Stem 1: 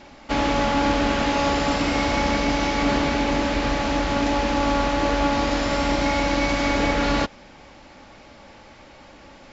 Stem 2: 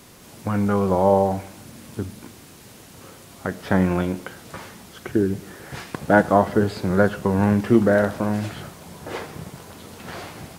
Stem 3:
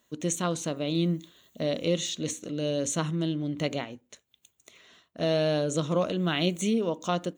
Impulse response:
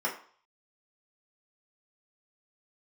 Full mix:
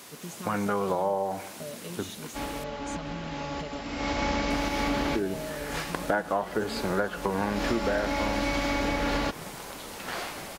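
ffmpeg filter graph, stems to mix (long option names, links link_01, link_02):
-filter_complex "[0:a]adelay=2050,volume=-0.5dB[link_01];[1:a]highpass=frequency=610:poles=1,volume=3dB,asplit=3[link_02][link_03][link_04];[link_02]atrim=end=2.64,asetpts=PTS-STARTPTS,afade=type=out:start_time=2.636:duration=0.004:curve=hsin[link_05];[link_03]atrim=start=2.64:end=4.5,asetpts=PTS-STARTPTS,volume=0[link_06];[link_04]atrim=start=4.5,asetpts=PTS-STARTPTS,afade=type=in:duration=0.004:curve=hsin[link_07];[link_05][link_06][link_07]concat=n=3:v=0:a=1[link_08];[2:a]equalizer=frequency=14000:width_type=o:width=2.6:gain=-6,aecho=1:1:4.8:0.93,acompressor=threshold=-31dB:ratio=3,volume=-8dB,asplit=2[link_09][link_10];[link_10]apad=whole_len=510424[link_11];[link_01][link_11]sidechaincompress=threshold=-56dB:ratio=4:attack=6.1:release=293[link_12];[link_12][link_08][link_09]amix=inputs=3:normalize=0,acompressor=threshold=-24dB:ratio=6"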